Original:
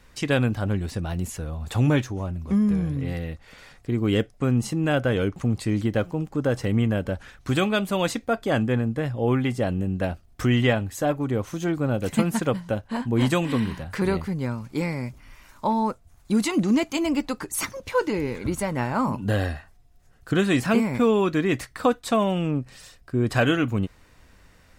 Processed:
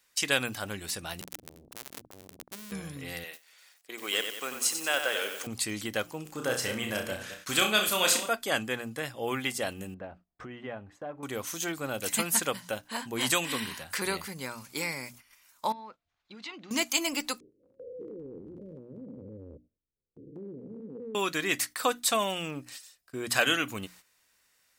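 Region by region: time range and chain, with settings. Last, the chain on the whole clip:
1.21–2.72 s: compression 12:1, threshold -27 dBFS + Schmitt trigger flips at -30.5 dBFS + transformer saturation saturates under 350 Hz
3.24–5.47 s: high-pass 480 Hz + bit-crushed delay 93 ms, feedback 55%, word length 8-bit, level -7 dB
6.22–8.29 s: chunks repeated in reverse 187 ms, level -10 dB + flutter echo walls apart 5.6 m, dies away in 0.34 s
9.94–11.23 s: Bessel low-pass 840 Hz + compression 2:1, threshold -30 dBFS
15.72–16.71 s: low-pass 3.9 kHz 24 dB/octave + compression 2.5:1, threshold -41 dBFS
17.40–21.15 s: spectrogram pixelated in time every 200 ms + steep low-pass 520 Hz 72 dB/octave + compression 4:1, threshold -27 dBFS
whole clip: hum notches 60/120/180/240/300 Hz; gate -42 dBFS, range -13 dB; tilt EQ +4.5 dB/octave; trim -3.5 dB

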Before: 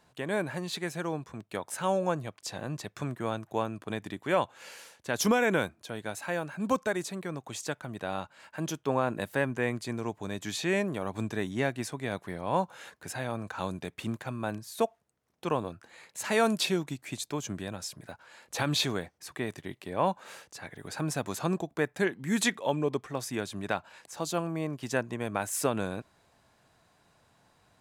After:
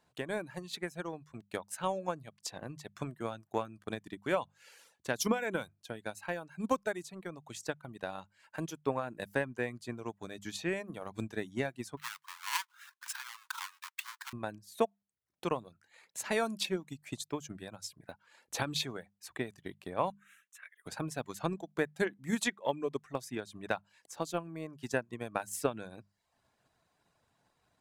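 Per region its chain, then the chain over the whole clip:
11.97–14.33 s: square wave that keeps the level + steep high-pass 950 Hz 72 dB/octave
20.10–20.86 s: high-pass 910 Hz 24 dB/octave + static phaser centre 2 kHz, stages 4
whole clip: reverb removal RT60 0.55 s; hum notches 50/100/150/200 Hz; transient shaper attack +8 dB, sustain -2 dB; trim -8.5 dB

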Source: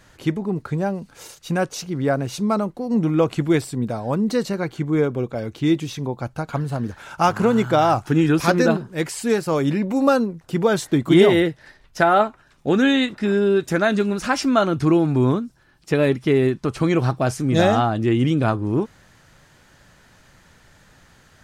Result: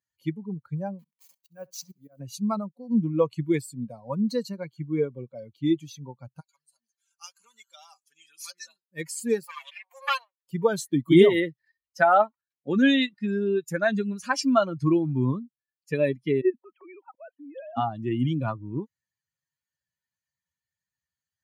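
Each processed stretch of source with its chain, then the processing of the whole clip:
0.99–2.20 s: send-on-delta sampling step -33.5 dBFS + slow attack 361 ms + flutter echo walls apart 11.3 m, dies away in 0.28 s
6.40–8.92 s: band-pass filter 7.7 kHz, Q 0.79 + comb 5.1 ms, depth 38%
9.43–10.47 s: comb filter that takes the minimum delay 5.7 ms + high-pass 800 Hz 24 dB/octave + dynamic bell 2.9 kHz, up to +6 dB, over -42 dBFS, Q 1.7
16.41–17.77 s: formants replaced by sine waves + level held to a coarse grid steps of 14 dB
whole clip: expander on every frequency bin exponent 2; high-pass 130 Hz 24 dB/octave

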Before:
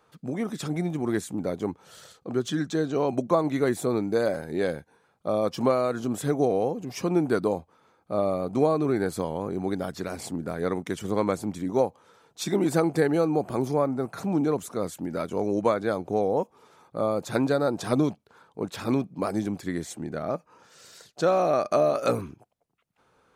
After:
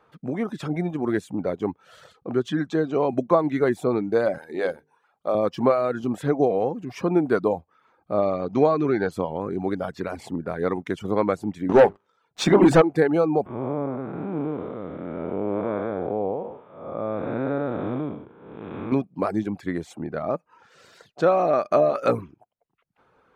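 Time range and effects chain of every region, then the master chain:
4.38–5.35 s: tone controls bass -12 dB, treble +3 dB + hum notches 50/100/150/200/250/300/350/400/450 Hz
8.22–9.11 s: brick-wall FIR low-pass 7 kHz + treble shelf 2.3 kHz +6.5 dB
11.69–12.82 s: Chebyshev low-pass 8.1 kHz + hum notches 50/100/150/200/250/300/350/400 Hz + waveshaping leveller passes 3
13.46–18.92 s: spectral blur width 347 ms + steep low-pass 3.6 kHz 96 dB/octave
whole clip: reverb removal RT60 0.51 s; tone controls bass -2 dB, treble -15 dB; trim +4 dB

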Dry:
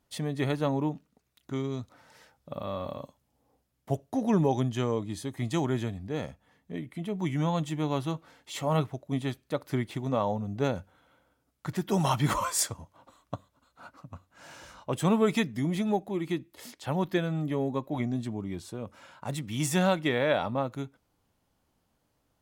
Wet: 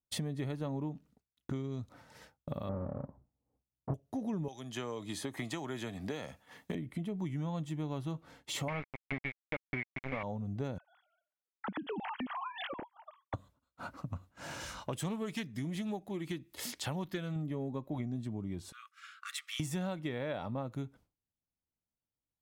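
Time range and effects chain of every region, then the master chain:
2.69–3.94 s: square wave that keeps the level + low-pass 1.1 kHz 24 dB/octave
4.48–6.75 s: high-pass 960 Hz 6 dB/octave + three bands compressed up and down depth 100%
8.68–10.23 s: bass shelf 120 Hz -11 dB + small samples zeroed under -30 dBFS + resonant low-pass 2.2 kHz, resonance Q 12
10.78–13.34 s: formants replaced by sine waves + compression, threshold -39 dBFS
14.60–17.36 s: tilt shelf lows -4.5 dB, about 1.3 kHz + loudspeaker Doppler distortion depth 0.11 ms
18.72–19.60 s: brick-wall FIR high-pass 1.1 kHz + treble shelf 8.2 kHz -6.5 dB
whole clip: expander -51 dBFS; bass shelf 300 Hz +8 dB; compression 6:1, threshold -40 dBFS; trim +4 dB

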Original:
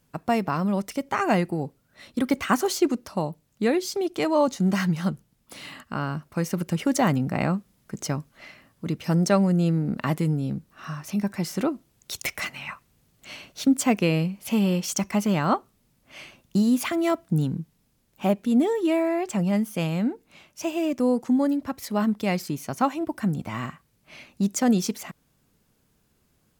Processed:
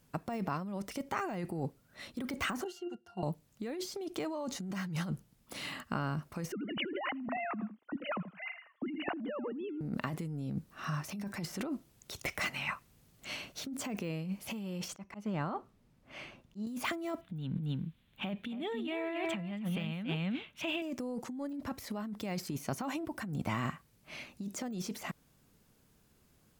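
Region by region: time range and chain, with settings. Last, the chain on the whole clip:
2.64–3.23 s: RIAA curve recording + pitch-class resonator F, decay 0.11 s
6.52–9.81 s: formants replaced by sine waves + feedback delay 81 ms, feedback 24%, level -16.5 dB
14.88–16.67 s: slow attack 510 ms + low-pass 2 kHz 6 dB/octave
17.21–20.82 s: FFT filter 220 Hz 0 dB, 350 Hz -6 dB, 880 Hz -3 dB, 3.5 kHz +8 dB, 5 kHz -14 dB, 7.2 kHz -14 dB, 16 kHz -11 dB + delay 275 ms -8 dB
whole clip: de-esser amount 85%; peak limiter -20.5 dBFS; compressor with a negative ratio -32 dBFS, ratio -1; trim -4.5 dB

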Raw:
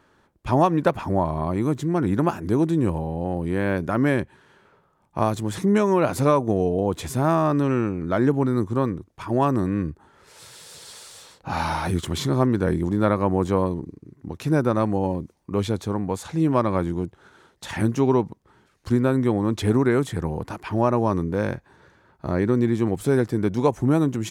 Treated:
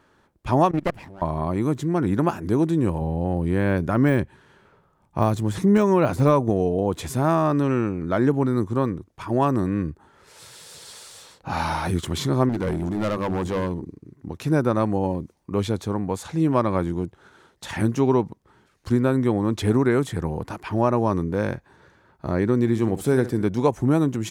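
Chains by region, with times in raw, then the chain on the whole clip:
0.71–1.22 s: comb filter that takes the minimum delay 0.38 ms + level held to a coarse grid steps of 21 dB
3.01–6.50 s: de-esser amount 75% + bass shelf 150 Hz +7 dB
12.49–13.84 s: hum notches 50/100/150/200/250/300/350/400 Hz + hard clipper -20.5 dBFS
22.59–23.43 s: treble shelf 9.2 kHz +3.5 dB + flutter echo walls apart 10.5 m, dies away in 0.26 s
whole clip: none

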